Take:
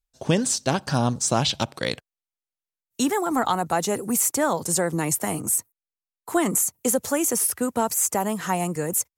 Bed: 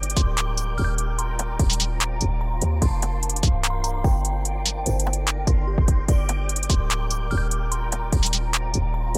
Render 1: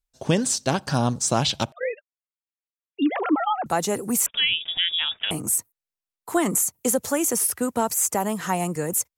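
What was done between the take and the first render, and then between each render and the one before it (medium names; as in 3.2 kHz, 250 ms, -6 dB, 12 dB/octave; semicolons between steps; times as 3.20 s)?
1.72–3.66 s: formants replaced by sine waves; 4.26–5.31 s: frequency inversion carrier 3.6 kHz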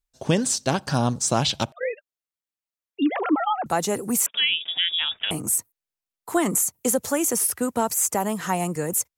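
4.23–4.98 s: high-pass 210 Hz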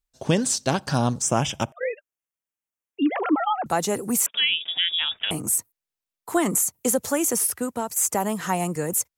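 1.22–3.23 s: Butterworth band-stop 4.2 kHz, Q 1.9; 7.40–7.96 s: fade out, to -8 dB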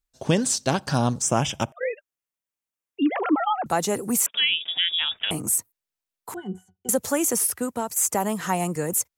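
6.34–6.89 s: pitch-class resonator F#, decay 0.14 s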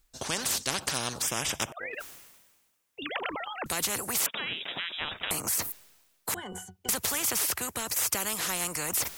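reverse; upward compressor, threshold -28 dBFS; reverse; spectrum-flattening compressor 4:1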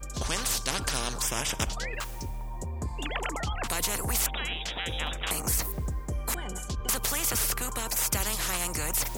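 add bed -14 dB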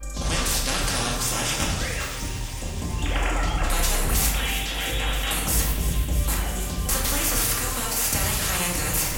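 feedback echo behind a high-pass 325 ms, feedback 78%, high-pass 2.1 kHz, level -10.5 dB; simulated room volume 560 m³, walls mixed, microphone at 2.2 m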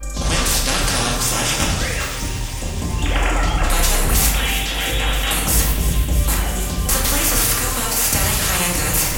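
trim +6 dB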